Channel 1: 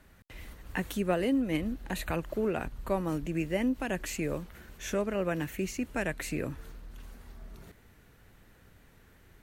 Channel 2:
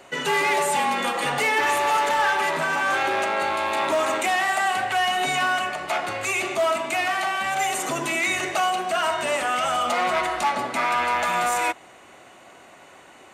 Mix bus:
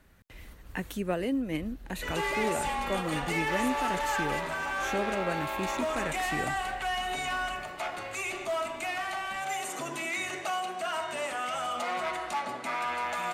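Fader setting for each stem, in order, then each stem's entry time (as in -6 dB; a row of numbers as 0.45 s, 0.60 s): -2.0 dB, -9.5 dB; 0.00 s, 1.90 s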